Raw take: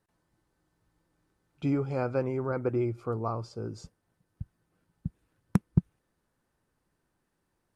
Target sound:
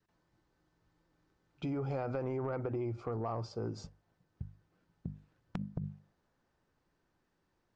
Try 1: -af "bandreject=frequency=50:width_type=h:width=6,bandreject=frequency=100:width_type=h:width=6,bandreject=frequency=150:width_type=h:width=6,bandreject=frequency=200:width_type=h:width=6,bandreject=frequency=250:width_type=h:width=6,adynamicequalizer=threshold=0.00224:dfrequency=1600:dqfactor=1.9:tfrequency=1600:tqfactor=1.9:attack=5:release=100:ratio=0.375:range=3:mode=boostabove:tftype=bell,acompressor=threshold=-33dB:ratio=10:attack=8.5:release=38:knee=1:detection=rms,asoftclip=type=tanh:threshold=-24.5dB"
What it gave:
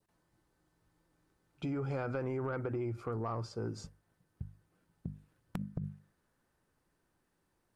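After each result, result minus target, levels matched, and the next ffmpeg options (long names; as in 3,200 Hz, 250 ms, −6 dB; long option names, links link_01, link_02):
2,000 Hz band +4.5 dB; 8,000 Hz band +3.5 dB
-af "bandreject=frequency=50:width_type=h:width=6,bandreject=frequency=100:width_type=h:width=6,bandreject=frequency=150:width_type=h:width=6,bandreject=frequency=200:width_type=h:width=6,bandreject=frequency=250:width_type=h:width=6,adynamicequalizer=threshold=0.00224:dfrequency=720:dqfactor=1.9:tfrequency=720:tqfactor=1.9:attack=5:release=100:ratio=0.375:range=3:mode=boostabove:tftype=bell,acompressor=threshold=-33dB:ratio=10:attack=8.5:release=38:knee=1:detection=rms,asoftclip=type=tanh:threshold=-24.5dB"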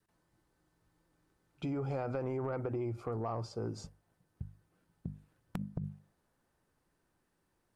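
8,000 Hz band +3.5 dB
-af "bandreject=frequency=50:width_type=h:width=6,bandreject=frequency=100:width_type=h:width=6,bandreject=frequency=150:width_type=h:width=6,bandreject=frequency=200:width_type=h:width=6,bandreject=frequency=250:width_type=h:width=6,adynamicequalizer=threshold=0.00224:dfrequency=720:dqfactor=1.9:tfrequency=720:tqfactor=1.9:attack=5:release=100:ratio=0.375:range=3:mode=boostabove:tftype=bell,acompressor=threshold=-33dB:ratio=10:attack=8.5:release=38:knee=1:detection=rms,lowpass=frequency=6500:width=0.5412,lowpass=frequency=6500:width=1.3066,asoftclip=type=tanh:threshold=-24.5dB"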